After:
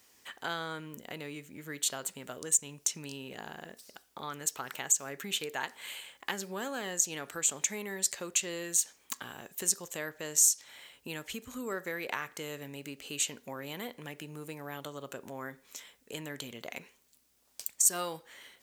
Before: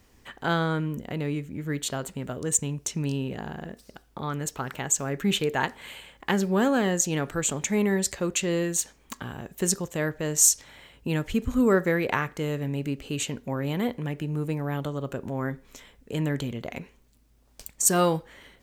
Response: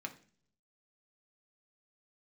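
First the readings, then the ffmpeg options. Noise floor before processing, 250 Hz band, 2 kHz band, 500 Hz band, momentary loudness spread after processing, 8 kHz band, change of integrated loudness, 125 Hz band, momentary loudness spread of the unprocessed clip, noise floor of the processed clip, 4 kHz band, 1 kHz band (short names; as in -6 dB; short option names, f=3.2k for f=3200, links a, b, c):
-60 dBFS, -16.5 dB, -7.0 dB, -13.0 dB, 16 LU, -2.5 dB, -6.0 dB, -19.0 dB, 14 LU, -67 dBFS, -3.5 dB, -9.5 dB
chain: -af "acompressor=threshold=-29dB:ratio=2.5,highpass=f=580:p=1,highshelf=f=3.4k:g=9.5,volume=-4dB"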